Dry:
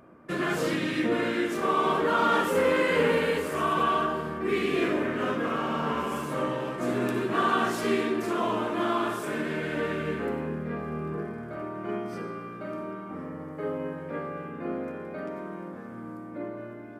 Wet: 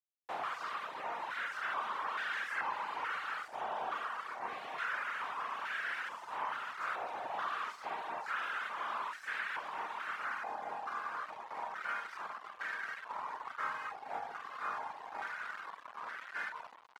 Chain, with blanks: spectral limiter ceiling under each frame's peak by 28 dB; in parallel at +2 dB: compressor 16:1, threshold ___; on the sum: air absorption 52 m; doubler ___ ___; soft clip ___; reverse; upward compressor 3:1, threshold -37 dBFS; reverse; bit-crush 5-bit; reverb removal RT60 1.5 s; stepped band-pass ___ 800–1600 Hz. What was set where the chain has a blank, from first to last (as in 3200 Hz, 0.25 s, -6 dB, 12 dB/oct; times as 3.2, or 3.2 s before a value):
-35 dBFS, 47 ms, -7.5 dB, -22.5 dBFS, 2.3 Hz